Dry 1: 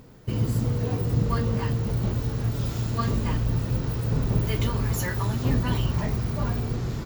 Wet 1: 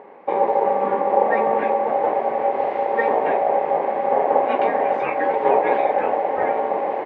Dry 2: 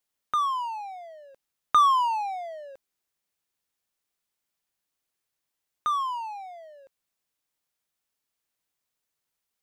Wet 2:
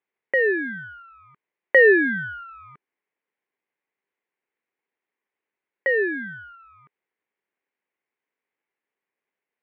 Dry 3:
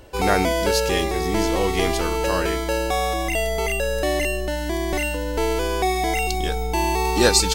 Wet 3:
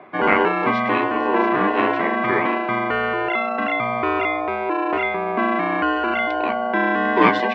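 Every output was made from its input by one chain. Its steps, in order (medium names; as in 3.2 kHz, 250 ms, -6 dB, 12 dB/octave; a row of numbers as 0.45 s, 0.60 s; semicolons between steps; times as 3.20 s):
ring modulator 680 Hz; cabinet simulation 250–2300 Hz, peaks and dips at 410 Hz +6 dB, 650 Hz -4 dB, 1.3 kHz -6 dB, 2.1 kHz +5 dB; normalise loudness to -20 LUFS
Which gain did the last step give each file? +9.5 dB, +7.0 dB, +7.0 dB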